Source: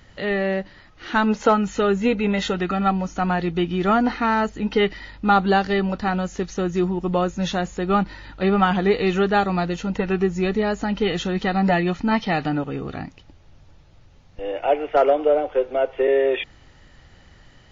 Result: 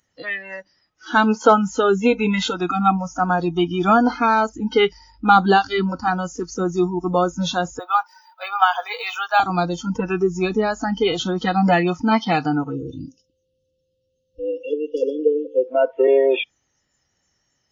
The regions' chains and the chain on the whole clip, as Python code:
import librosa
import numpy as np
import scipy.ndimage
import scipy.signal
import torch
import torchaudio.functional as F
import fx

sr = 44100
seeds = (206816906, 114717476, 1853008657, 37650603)

y = fx.chain(x, sr, fx.highpass(hz=620.0, slope=24),
    fx.resample_linear(factor=2), at=(7.79, 9.4))
y = fx.dmg_tone(y, sr, hz=520.0, level_db=-49.0, at=(12.72, 15.66), fade=0.02)
y = fx.brickwall_bandstop(y, sr, low_hz=540.0, high_hz=2600.0, at=(12.72, 15.66), fade=0.02)
y = fx.echo_single(y, sr, ms=129, db=-19.0, at=(12.72, 15.66), fade=0.02)
y = fx.noise_reduce_blind(y, sr, reduce_db=24)
y = fx.highpass(y, sr, hz=160.0, slope=6)
y = y * librosa.db_to_amplitude(4.5)